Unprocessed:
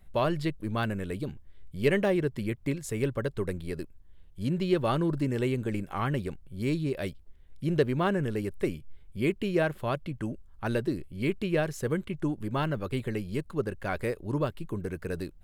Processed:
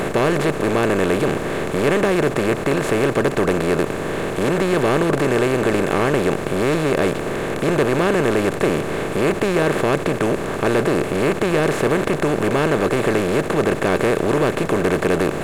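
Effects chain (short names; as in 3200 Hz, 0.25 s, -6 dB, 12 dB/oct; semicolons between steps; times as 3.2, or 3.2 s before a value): per-bin compression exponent 0.2; in parallel at -4.5 dB: overloaded stage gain 19 dB; on the sum: gain -1.5 dB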